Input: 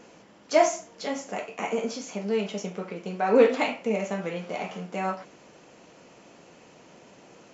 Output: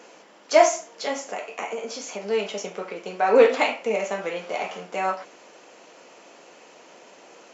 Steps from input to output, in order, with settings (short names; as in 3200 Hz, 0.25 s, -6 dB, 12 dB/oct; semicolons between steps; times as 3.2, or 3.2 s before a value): HPF 400 Hz 12 dB/oct; 1.18–2.23 compressor 5:1, threshold -33 dBFS, peak gain reduction 7 dB; gain +5 dB